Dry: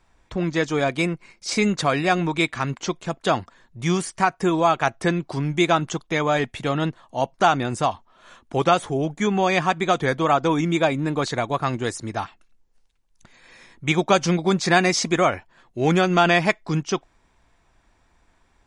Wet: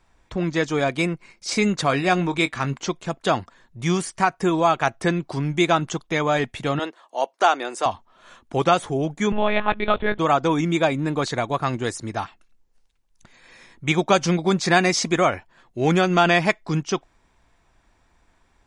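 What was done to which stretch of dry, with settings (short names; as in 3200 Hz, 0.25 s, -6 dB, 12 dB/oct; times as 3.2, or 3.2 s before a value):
1.87–2.79 doubler 22 ms -13 dB
6.79–7.86 HPF 350 Hz 24 dB/oct
9.32–10.19 monotone LPC vocoder at 8 kHz 210 Hz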